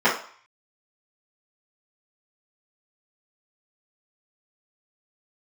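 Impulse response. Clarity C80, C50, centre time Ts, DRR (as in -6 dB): 12.0 dB, 7.0 dB, 28 ms, -12.5 dB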